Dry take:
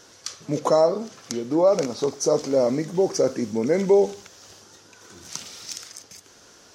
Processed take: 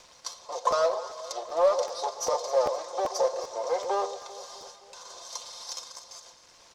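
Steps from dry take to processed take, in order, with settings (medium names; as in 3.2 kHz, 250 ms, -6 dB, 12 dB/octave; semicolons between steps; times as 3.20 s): comb filter that takes the minimum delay 1.9 ms; high-pass 650 Hz 24 dB/octave; gate with hold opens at -40 dBFS; high-order bell 2 kHz -13.5 dB 1.3 oct; comb 5.7 ms, depth 60%; in parallel at -8 dB: saturation -23.5 dBFS, distortion -12 dB; on the sum: companded quantiser 6-bit; upward compressor, threshold -33 dBFS; crackle 240 per s -42 dBFS; distance through air 95 m; echo whose repeats swap between lows and highs 130 ms, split 950 Hz, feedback 74%, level -12 dB; crackling interface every 0.39 s, samples 512, repeat, from 0.31 s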